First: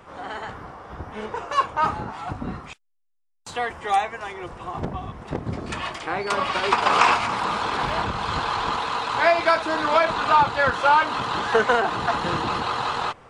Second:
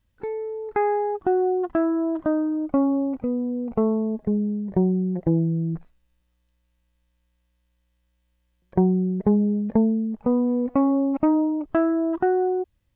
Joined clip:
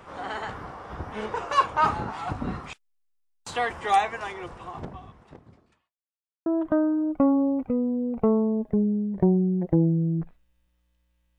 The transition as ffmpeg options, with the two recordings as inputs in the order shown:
ffmpeg -i cue0.wav -i cue1.wav -filter_complex "[0:a]apad=whole_dur=11.38,atrim=end=11.38,asplit=2[link_01][link_02];[link_01]atrim=end=5.94,asetpts=PTS-STARTPTS,afade=type=out:start_time=4.18:duration=1.76:curve=qua[link_03];[link_02]atrim=start=5.94:end=6.46,asetpts=PTS-STARTPTS,volume=0[link_04];[1:a]atrim=start=2:end=6.92,asetpts=PTS-STARTPTS,afade=type=in:duration=0.004:curve=hsin[link_05];[link_03][link_04][link_05]concat=n=3:v=0:a=1" out.wav

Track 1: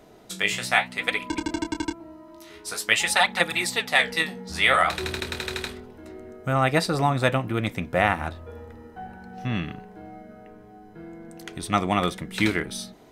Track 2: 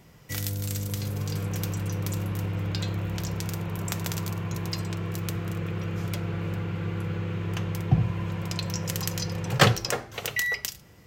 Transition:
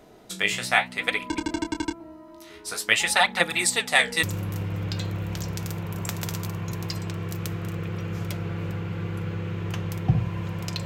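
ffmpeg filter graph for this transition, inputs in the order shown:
ffmpeg -i cue0.wav -i cue1.wav -filter_complex "[0:a]asettb=1/sr,asplit=3[link_01][link_02][link_03];[link_01]atrim=end=3.594[link_04];[link_02]atrim=start=3.59:end=4.23,asetpts=PTS-STARTPTS,afade=type=in:duration=0.004:curve=qsin,afade=type=out:start_time=0.636:duration=0.004:curve=qsin,equalizer=frequency=8100:width=1.5:gain=9[link_05];[link_03]atrim=start=4.226[link_06];[link_04][link_05]acrossfade=duration=0.004:curve1=hsin:curve2=qsin[link_07];[link_07][link_06]acrossfade=duration=0.004:curve1=qsin:curve2=hsin,apad=whole_dur=10.85,atrim=end=10.85,atrim=end=4.232[link_08];[1:a]atrim=start=2.058:end=8.68[link_09];[link_08][link_09]acrossfade=duration=0.004:curve1=hsin:curve2=hsin" out.wav

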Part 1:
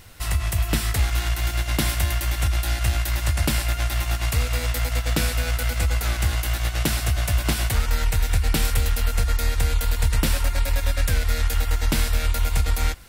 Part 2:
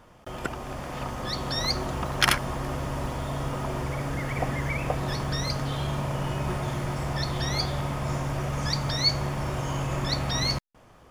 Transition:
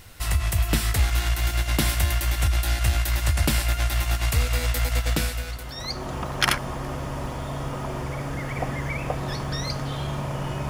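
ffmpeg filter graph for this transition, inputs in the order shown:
ffmpeg -i cue0.wav -i cue1.wav -filter_complex "[0:a]apad=whole_dur=10.69,atrim=end=10.69,atrim=end=6.14,asetpts=PTS-STARTPTS[link_01];[1:a]atrim=start=0.86:end=6.49,asetpts=PTS-STARTPTS[link_02];[link_01][link_02]acrossfade=duration=1.08:curve1=qua:curve2=qua" out.wav

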